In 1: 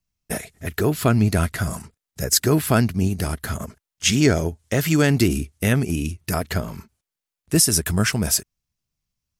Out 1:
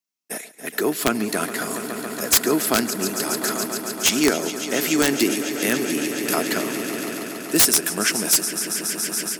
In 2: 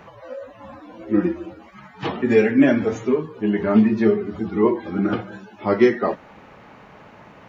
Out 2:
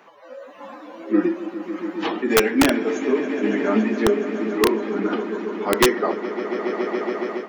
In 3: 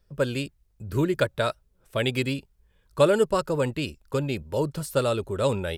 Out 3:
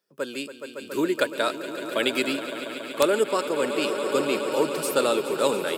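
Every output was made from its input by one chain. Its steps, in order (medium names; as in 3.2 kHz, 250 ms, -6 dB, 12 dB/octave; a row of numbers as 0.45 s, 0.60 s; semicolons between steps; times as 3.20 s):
high-pass 250 Hz 24 dB/octave; treble shelf 5.2 kHz +3.5 dB; echo with a slow build-up 140 ms, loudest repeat 5, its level -14 dB; integer overflow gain 7 dB; peaking EQ 560 Hz -3 dB 0.56 oct; level rider gain up to 8.5 dB; peak normalisation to -6 dBFS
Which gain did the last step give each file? -4.5 dB, -4.5 dB, -4.5 dB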